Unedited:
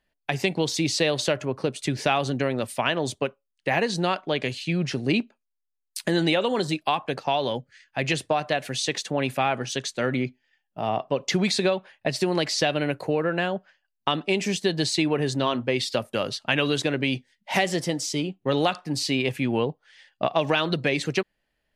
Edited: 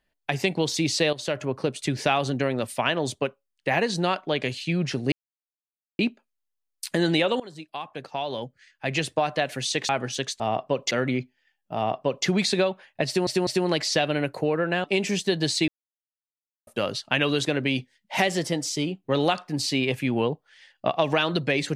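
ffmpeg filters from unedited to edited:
-filter_complex "[0:a]asplit=12[a][b][c][d][e][f][g][h][i][j][k][l];[a]atrim=end=1.13,asetpts=PTS-STARTPTS,afade=t=out:st=1.126:d=0.004:c=hsin:silence=0.199526[m];[b]atrim=start=1.13:end=5.12,asetpts=PTS-STARTPTS,afade=t=in:d=0.31:silence=0.199526,afade=t=out:st=3.986:d=0.004:c=hsin,apad=pad_dur=0.87[n];[c]atrim=start=5.12:end=6.53,asetpts=PTS-STARTPTS,afade=t=in:d=0.004:c=hsin,afade=t=out:st=1.406:d=0.004:c=hsin:silence=0.105925[o];[d]atrim=start=6.53:end=9.022,asetpts=PTS-STARTPTS,afade=t=in:d=1.81:silence=0.105925[p];[e]atrim=start=9.458:end=9.972[q];[f]atrim=start=10.808:end=11.322[r];[g]atrim=start=9.968:end=12.332[s];[h]atrim=start=12.128:end=12.332[t];[i]atrim=start=12.128:end=13.502[u];[j]atrim=start=14.208:end=15.05,asetpts=PTS-STARTPTS,afade=t=out:st=0.838:d=0.004:c=hsin[v];[k]atrim=start=15.05:end=16.04,asetpts=PTS-STARTPTS,volume=0[w];[l]atrim=start=16.04,asetpts=PTS-STARTPTS,afade=t=in:d=0.004:c=hsin[x];[m][n][o][p]concat=n=4:v=0:a=1[y];[y][q]acrossfade=d=0.004:c1=hsin:c2=hsin[z];[z][r]acrossfade=d=0.004:c1=hsin:c2=hsin[aa];[aa][s]acrossfade=d=0.004:c1=hsin:c2=hsin[ab];[ab][t]acrossfade=d=0.004:c1=hsin:c2=hsin[ac];[ac][u]acrossfade=d=0.004:c1=hsin:c2=hsin[ad];[v][w][x]concat=n=3:v=0:a=1[ae];[ad][ae]acrossfade=d=0.004:c1=hsin:c2=hsin"

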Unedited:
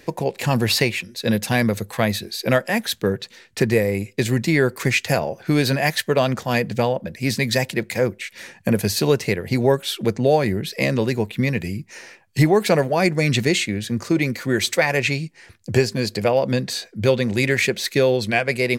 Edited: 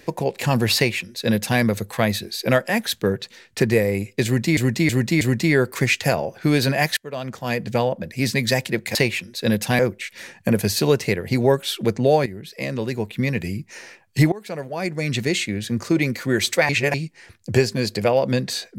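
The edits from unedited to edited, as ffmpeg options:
-filter_complex "[0:a]asplit=11[a][b][c][d][e][f][g][h][i][j][k];[a]atrim=end=4.572[l];[b]atrim=start=4.248:end=4.572[m];[c]atrim=start=4.248:end=4.572[n];[d]atrim=start=4.248:end=6.01,asetpts=PTS-STARTPTS,afade=t=out:st=1.758:d=0.004:c=hsin:silence=0.0668344[o];[e]atrim=start=6.01:end=7.992,asetpts=PTS-STARTPTS,afade=t=in:d=0.89:silence=0.0668344[p];[f]atrim=start=0.758:end=1.602[q];[g]atrim=start=7.988:end=10.46,asetpts=PTS-STARTPTS,afade=t=out:st=2.468:d=0.004:c=hsin:silence=0.199526[r];[h]atrim=start=10.46:end=12.52,asetpts=PTS-STARTPTS,afade=t=in:d=1.24:silence=0.199526,afade=t=out:st=2.056:d=0.004:c=hsin:silence=0.0749894[s];[i]atrim=start=12.52:end=14.892,asetpts=PTS-STARTPTS,afade=t=in:d=1.42:silence=0.0749894[t];[j]atrim=start=14.888:end=15.142,asetpts=PTS-STARTPTS,areverse[u];[k]atrim=start=15.138[v];[l][m]acrossfade=d=0.004:c1=hsin:c2=hsin[w];[w][n]acrossfade=d=0.004:c1=hsin:c2=hsin[x];[o][p]concat=n=2:v=0:a=1[y];[x][y]acrossfade=d=0.004:c1=hsin:c2=hsin[z];[z][q]acrossfade=d=0.004:c1=hsin:c2=hsin[aa];[r][s][t]concat=n=3:v=0:a=1[ab];[aa][ab]acrossfade=d=0.004:c1=hsin:c2=hsin[ac];[ac][u]acrossfade=d=0.004:c1=hsin:c2=hsin[ad];[ad][v]acrossfade=d=0.004:c1=hsin:c2=hsin"

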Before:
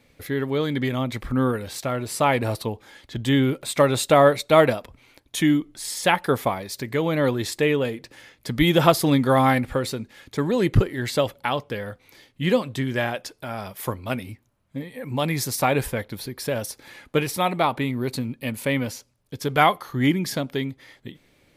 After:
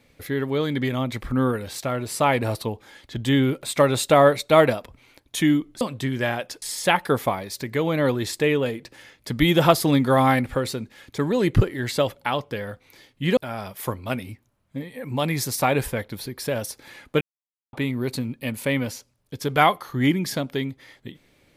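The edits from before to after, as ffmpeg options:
-filter_complex "[0:a]asplit=6[a][b][c][d][e][f];[a]atrim=end=5.812[g];[b]atrim=start=12.558:end=13.372[h];[c]atrim=start=5.808:end=12.562[i];[d]atrim=start=13.368:end=17.21,asetpts=PTS-STARTPTS,afade=t=out:st=3.838:d=0.004:c=hsin[j];[e]atrim=start=17.21:end=17.73,asetpts=PTS-STARTPTS,volume=0[k];[f]atrim=start=17.73,asetpts=PTS-STARTPTS,afade=t=in:d=0.004:c=hsin[l];[g][h]acrossfade=d=0.004:c1=hsin:c2=hsin[m];[m][i]acrossfade=d=0.004:c1=hsin:c2=hsin[n];[j][k][l]concat=n=3:v=0:a=1[o];[n][o]acrossfade=d=0.004:c1=hsin:c2=hsin"

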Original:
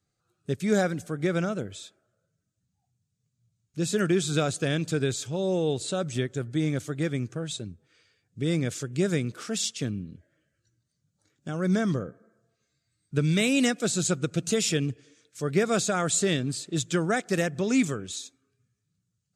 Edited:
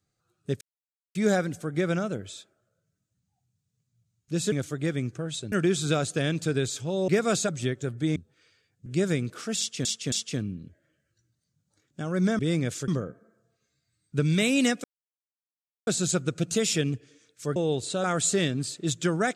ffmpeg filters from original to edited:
-filter_complex "[0:a]asplit=15[a][b][c][d][e][f][g][h][i][j][k][l][m][n][o];[a]atrim=end=0.61,asetpts=PTS-STARTPTS,afade=t=out:st=0.606:d=0.004:c=hsin,apad=pad_dur=0.54[p];[b]atrim=start=0.61:end=3.982,asetpts=PTS-STARTPTS,afade=t=in:d=0.004:c=hsin[q];[c]atrim=start=6.688:end=7.692[r];[d]atrim=start=3.978:end=5.542[s];[e]atrim=start=15.518:end=15.932[t];[f]atrim=start=6.018:end=6.692[u];[g]atrim=start=7.688:end=8.392[v];[h]atrim=start=8.878:end=9.872[w];[i]atrim=start=9.598:end=9.872[x];[j]atrim=start=9.598:end=11.872[y];[k]atrim=start=8.388:end=8.882[z];[l]atrim=start=11.868:end=13.83,asetpts=PTS-STARTPTS,afade=t=out:st=1.958:d=0.004:c=hsin,apad=pad_dur=1.03[aa];[m]atrim=start=13.83:end=15.522,asetpts=PTS-STARTPTS,afade=t=in:d=0.004:c=hsin[ab];[n]atrim=start=5.538:end=6.022[ac];[o]atrim=start=15.928[ad];[p][q]concat=n=2:v=0:a=1[ae];[ae][r]acrossfade=d=0.004:c1=hsin:c2=hsin[af];[af][s]acrossfade=d=0.004:c1=hsin:c2=hsin[ag];[ag][t]acrossfade=d=0.004:c1=hsin:c2=hsin[ah];[ah][u]acrossfade=d=0.004:c1=hsin:c2=hsin[ai];[ai][v]acrossfade=d=0.004:c1=hsin:c2=hsin[aj];[aj][w]acrossfade=d=0.004:c1=hsin:c2=hsin[ak];[ak][x]acrossfade=d=0.004:c1=hsin:c2=hsin[al];[al][y]acrossfade=d=0.004:c1=hsin:c2=hsin[am];[am][z]acrossfade=d=0.004:c1=hsin:c2=hsin[an];[aa][ab]concat=n=2:v=0:a=1[ao];[an][ao]acrossfade=d=0.004:c1=hsin:c2=hsin[ap];[ap][ac]acrossfade=d=0.004:c1=hsin:c2=hsin[aq];[aq][ad]acrossfade=d=0.004:c1=hsin:c2=hsin"

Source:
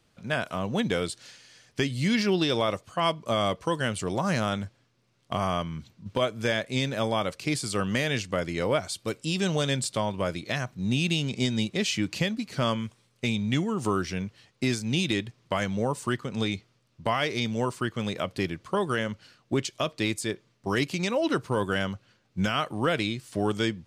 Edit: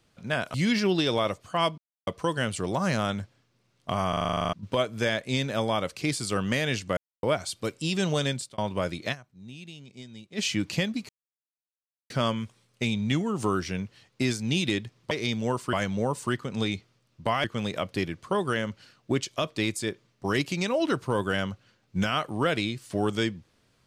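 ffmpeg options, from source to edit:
-filter_complex "[0:a]asplit=24[a][b][c][d][e][f][g][h][i][j][k][l][m][n][o][p][q][r][s][t][u][v][w][x];[a]atrim=end=0.542[y];[b]atrim=start=1.968:end=3.21,asetpts=PTS-STARTPTS,afade=t=out:st=1.238:d=0.004:c=hsin[z];[c]atrim=start=3.21:end=3.5,asetpts=PTS-STARTPTS,volume=0[aa];[d]atrim=start=3.5:end=5.562,asetpts=PTS-STARTPTS,afade=t=in:d=0.004:c=hsin[ab];[e]atrim=start=5.518:end=5.562[ac];[f]atrim=start=5.518:end=5.562[ad];[g]atrim=start=5.518:end=5.562[ae];[h]atrim=start=5.518:end=5.562[af];[i]atrim=start=5.518:end=5.562[ag];[j]atrim=start=5.518:end=5.562[ah];[k]atrim=start=5.518:end=5.562[ai];[l]atrim=start=5.518:end=5.562[aj];[m]atrim=start=5.518:end=5.562[ak];[n]atrim=start=5.518:end=5.562[al];[o]atrim=start=5.958:end=8.4,asetpts=PTS-STARTPTS,afade=t=out:st=2.438:d=0.004:c=hsin[am];[p]atrim=start=8.4:end=8.66,asetpts=PTS-STARTPTS,volume=0[an];[q]atrim=start=8.66:end=10.01,asetpts=PTS-STARTPTS,afade=t=in:d=0.004:c=hsin,afade=t=out:st=1.02:d=0.33[ao];[r]atrim=start=10.01:end=10.72,asetpts=PTS-STARTPTS,afade=t=in:d=0.004:c=hsin,afade=t=out:st=0.54:d=0.17:c=exp:silence=0.125893[ap];[s]atrim=start=10.72:end=11.65,asetpts=PTS-STARTPTS,volume=-18dB[aq];[t]atrim=start=11.65:end=12.52,asetpts=PTS-STARTPTS,afade=t=in:d=0.17:c=exp:silence=0.125893,afade=t=out:st=0.866:d=0.004:c=hsin,apad=pad_dur=1.01[ar];[u]atrim=start=12.52:end=15.532,asetpts=PTS-STARTPTS,afade=t=in:d=0.004:c=hsin[as];[v]atrim=start=17.238:end=17.862[at];[w]atrim=start=15.528:end=17.242[au];[x]atrim=start=17.858[av];[z][aa][ab]concat=n=3:v=0:a=1[aw];[y][aw]acrossfade=d=0.004:c1=hsin:c2=hsin[ax];[ax][ac]acrossfade=d=0.004:c1=hsin:c2=hsin[ay];[ay][ad]acrossfade=d=0.004:c1=hsin:c2=hsin[az];[az][ae]acrossfade=d=0.004:c1=hsin:c2=hsin[ba];[ba][af]acrossfade=d=0.004:c1=hsin:c2=hsin[bb];[bb][ag]acrossfade=d=0.004:c1=hsin:c2=hsin[bc];[bc][ah]acrossfade=d=0.004:c1=hsin:c2=hsin[bd];[bd][ai]acrossfade=d=0.004:c1=hsin:c2=hsin[be];[be][aj]acrossfade=d=0.004:c1=hsin:c2=hsin[bf];[bf][ak]acrossfade=d=0.004:c1=hsin:c2=hsin[bg];[bg][al]acrossfade=d=0.004:c1=hsin:c2=hsin[bh];[am][an][ao][ap][aq][ar][as]concat=n=7:v=0:a=1[bi];[bh][bi]acrossfade=d=0.004:c1=hsin:c2=hsin[bj];[bj][at]acrossfade=d=0.004:c1=hsin:c2=hsin[bk];[bk][au]acrossfade=d=0.004:c1=hsin:c2=hsin[bl];[bl][av]acrossfade=d=0.004:c1=hsin:c2=hsin"

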